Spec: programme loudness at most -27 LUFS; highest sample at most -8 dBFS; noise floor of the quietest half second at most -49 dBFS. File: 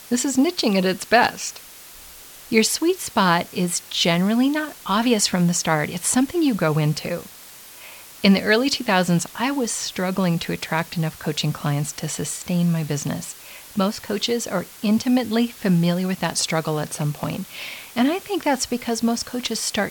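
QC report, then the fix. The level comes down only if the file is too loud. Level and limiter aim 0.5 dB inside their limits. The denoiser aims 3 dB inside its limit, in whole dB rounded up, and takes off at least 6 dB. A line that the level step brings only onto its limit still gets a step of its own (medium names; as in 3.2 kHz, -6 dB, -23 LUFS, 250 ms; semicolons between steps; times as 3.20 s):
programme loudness -21.5 LUFS: fail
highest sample -3.5 dBFS: fail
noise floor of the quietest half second -43 dBFS: fail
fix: noise reduction 6 dB, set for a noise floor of -43 dBFS; trim -6 dB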